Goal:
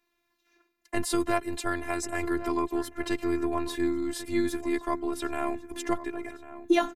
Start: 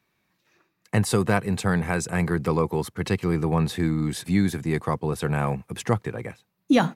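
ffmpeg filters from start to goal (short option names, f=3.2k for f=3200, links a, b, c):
-filter_complex "[0:a]afftfilt=real='hypot(re,im)*cos(PI*b)':imag='0':win_size=512:overlap=0.75,asplit=2[a][b];[b]adelay=1097,lowpass=f=2.2k:p=1,volume=-14dB,asplit=2[c][d];[d]adelay=1097,lowpass=f=2.2k:p=1,volume=0.28,asplit=2[e][f];[f]adelay=1097,lowpass=f=2.2k:p=1,volume=0.28[g];[a][c][e][g]amix=inputs=4:normalize=0"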